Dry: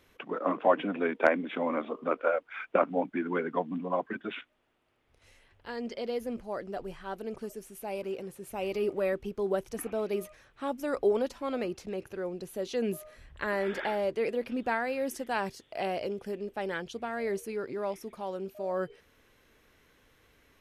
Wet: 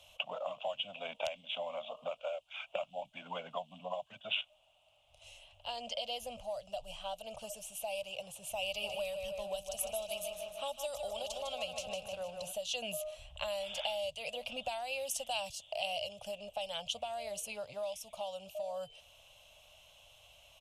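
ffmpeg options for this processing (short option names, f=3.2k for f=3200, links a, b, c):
-filter_complex "[0:a]asplit=3[a][b][c];[a]afade=t=out:st=8.81:d=0.02[d];[b]aecho=1:1:153|306|459|612|765|918:0.422|0.223|0.118|0.0628|0.0333|0.0176,afade=t=in:st=8.81:d=0.02,afade=t=out:st=12.51:d=0.02[e];[c]afade=t=in:st=12.51:d=0.02[f];[d][e][f]amix=inputs=3:normalize=0,firequalizer=gain_entry='entry(110,0);entry(360,-30);entry(600,13);entry(1000,1);entry(1800,-17);entry(2800,13);entry(4500,-3)':delay=0.05:min_phase=1,acrossover=split=130|3000[g][h][i];[h]acompressor=threshold=-37dB:ratio=6[j];[g][j][i]amix=inputs=3:normalize=0,equalizer=f=7.7k:t=o:w=1.5:g=13.5,volume=-1.5dB"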